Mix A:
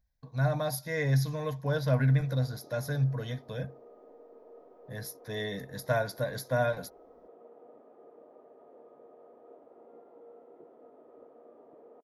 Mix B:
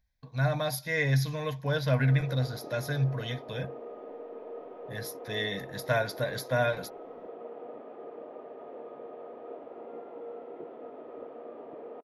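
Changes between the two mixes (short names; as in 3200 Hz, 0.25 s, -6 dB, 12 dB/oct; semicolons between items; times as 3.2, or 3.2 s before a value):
background +10.5 dB; master: add bell 2700 Hz +9.5 dB 1.2 oct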